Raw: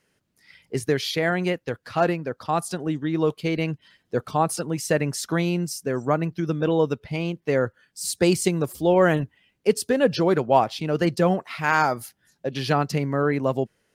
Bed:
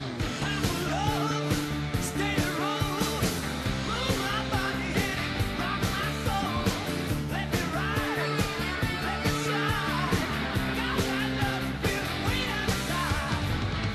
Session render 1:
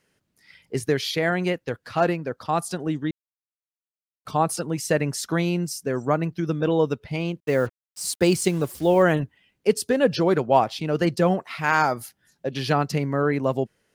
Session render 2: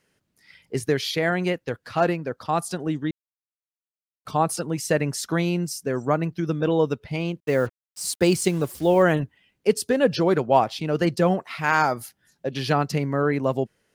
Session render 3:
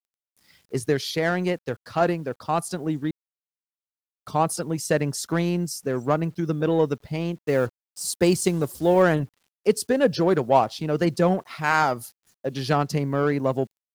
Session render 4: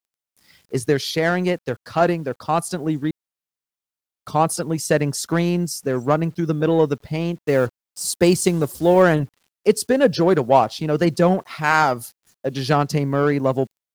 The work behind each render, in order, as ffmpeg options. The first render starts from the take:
-filter_complex "[0:a]asettb=1/sr,asplit=3[s0][s1][s2];[s0]atrim=end=7.404[s3];[s1]atrim=start=7.4:end=9.03,asetpts=PTS-STARTPTS,afade=t=in:d=0.004:c=qsin,afade=t=out:st=1.626:d=0.004:c=qsin,acrusher=bits=6:mix=0:aa=0.5[s4];[s2]atrim=start=9.026[s5];[s3][s4]acrossfade=d=0.004:c1=hsin:c2=qsin[s6];[s6][s5]acrossfade=d=0.004:c1=qsin:c2=hsin,asplit=3[s7][s8][s9];[s7]atrim=end=3.11,asetpts=PTS-STARTPTS,afade=t=out:st=3.106:d=0.004:c=hsin[s10];[s8]atrim=start=3.11:end=4.25,asetpts=PTS-STARTPTS,volume=0[s11];[s9]atrim=start=4.25,asetpts=PTS-STARTPTS,afade=t=in:d=0.004:c=hsin[s12];[s10][s11][s12]concat=n=3:v=0:a=1"
-af anull
-filter_complex "[0:a]acrossover=split=2800[s0][s1];[s0]adynamicsmooth=sensitivity=2:basefreq=1600[s2];[s2][s1]amix=inputs=2:normalize=0,acrusher=bits=9:mix=0:aa=0.000001"
-af "volume=1.58,alimiter=limit=0.794:level=0:latency=1"

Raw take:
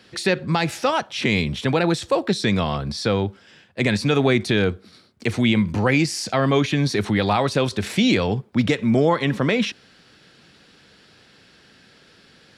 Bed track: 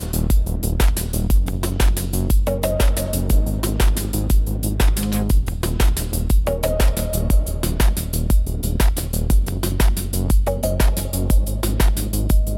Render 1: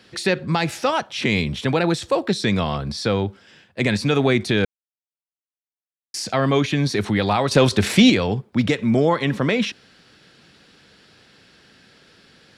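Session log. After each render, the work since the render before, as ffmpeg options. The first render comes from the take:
-filter_complex "[0:a]asettb=1/sr,asplit=3[s0][s1][s2];[s0]atrim=end=7.514[s3];[s1]atrim=start=7.51:end=8.1,asetpts=PTS-STARTPTS,afade=t=in:d=0.004:c=qsin,afade=t=out:st=0.586:d=0.004:c=qsin,acontrast=72[s4];[s2]atrim=start=8.096[s5];[s3][s4]acrossfade=d=0.004:c1=hsin:c2=qsin[s6];[s6][s5]acrossfade=d=0.004:c1=qsin:c2=hsin,asplit=3[s7][s8][s9];[s7]atrim=end=4.65,asetpts=PTS-STARTPTS,afade=t=out:st=4.646:d=0.004:c=hsin[s10];[s8]atrim=start=4.65:end=6.14,asetpts=PTS-STARTPTS,volume=0[s11];[s9]atrim=start=6.14,asetpts=PTS-STARTPTS,afade=t=in:d=0.004:c=hsin[s12];[s10][s11][s12]concat=n=3:v=0:a=1"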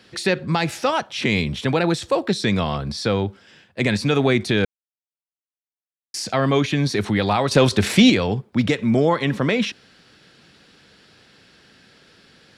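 -af anull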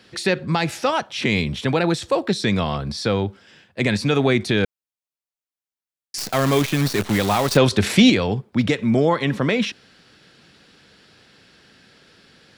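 -filter_complex "[0:a]asettb=1/sr,asplit=3[s0][s1][s2];[s0]atrim=end=6.184[s3];[s1]atrim=start=6.18:end=7.57,asetpts=PTS-STARTPTS,afade=t=in:d=0.004:c=qsin,afade=t=out:st=1.386:d=0.004:c=qsin,acrusher=bits=5:dc=4:mix=0:aa=0.000001[s4];[s2]atrim=start=7.566[s5];[s3][s4]acrossfade=d=0.004:c1=hsin:c2=qsin[s6];[s6][s5]acrossfade=d=0.004:c1=qsin:c2=hsin"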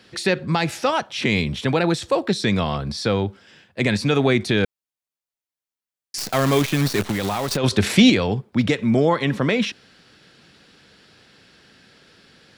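-filter_complex "[0:a]asplit=3[s0][s1][s2];[s0]afade=t=out:st=7.1:d=0.02[s3];[s1]acompressor=threshold=0.112:ratio=6:attack=3.2:release=140:knee=1:detection=peak,afade=t=in:st=7.1:d=0.02,afade=t=out:st=7.63:d=0.02[s4];[s2]afade=t=in:st=7.63:d=0.02[s5];[s3][s4][s5]amix=inputs=3:normalize=0"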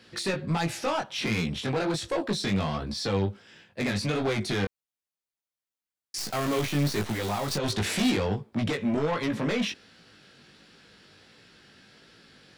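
-af "asoftclip=type=tanh:threshold=0.106,flanger=delay=17.5:depth=3.4:speed=1.4"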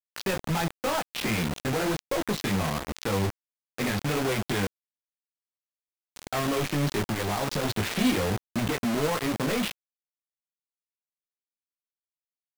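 -af "adynamicsmooth=sensitivity=6.5:basefreq=700,acrusher=bits=4:mix=0:aa=0.000001"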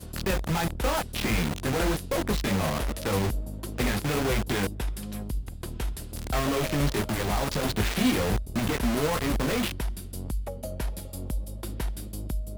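-filter_complex "[1:a]volume=0.178[s0];[0:a][s0]amix=inputs=2:normalize=0"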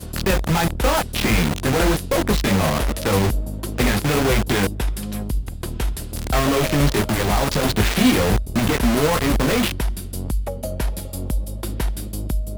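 -af "volume=2.51"

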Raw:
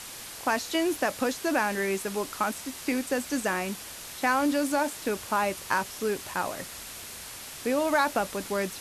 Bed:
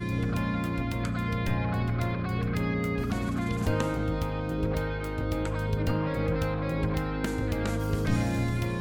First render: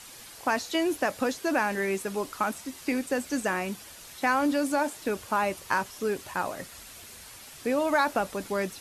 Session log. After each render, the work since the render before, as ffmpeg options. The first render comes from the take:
-af "afftdn=nr=7:nf=-42"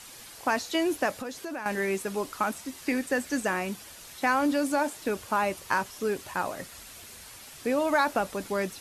-filter_complex "[0:a]asettb=1/sr,asplit=3[s0][s1][s2];[s0]atrim=end=1.134[s3];[s1]atrim=start=1.13:end=1.66,asetpts=PTS-STARTPTS,afade=t=in:d=0.004:c=qsin,afade=t=out:st=0.526:d=0.004:c=qsin,acompressor=threshold=0.0178:ratio=3:attack=3.2:release=140:knee=1:detection=peak[s4];[s2]atrim=start=1.656[s5];[s3][s4]acrossfade=d=0.004:c1=hsin:c2=qsin[s6];[s6][s5]acrossfade=d=0.004:c1=qsin:c2=hsin,asettb=1/sr,asplit=3[s7][s8][s9];[s7]atrim=end=2.834[s10];[s8]atrim=start=2.83:end=3.38,asetpts=PTS-STARTPTS,afade=t=in:d=0.004:c=qsin,afade=t=out:st=0.546:d=0.004:c=qsin,equalizer=f=1800:t=o:w=0.22:g=7[s11];[s9]atrim=start=3.376[s12];[s10][s11]acrossfade=d=0.004:c1=hsin:c2=qsin[s13];[s13][s12]acrossfade=d=0.004:c1=qsin:c2=hsin"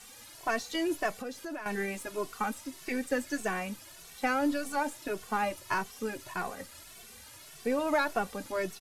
-filter_complex "[0:a]aeval=exprs='if(lt(val(0),0),0.708*val(0),val(0))':c=same,asplit=2[s0][s1];[s1]adelay=2.2,afreqshift=1.7[s2];[s0][s2]amix=inputs=2:normalize=1"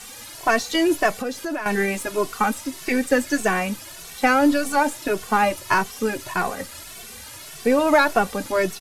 -af "volume=3.76"

